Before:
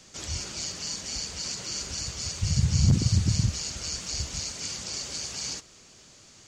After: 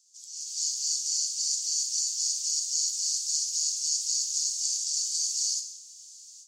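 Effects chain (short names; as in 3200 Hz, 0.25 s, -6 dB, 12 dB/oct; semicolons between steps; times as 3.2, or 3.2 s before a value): inverse Chebyshev high-pass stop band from 930 Hz, stop band 80 dB; non-linear reverb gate 0.28 s falling, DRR 4.5 dB; AGC gain up to 16 dB; gain -8.5 dB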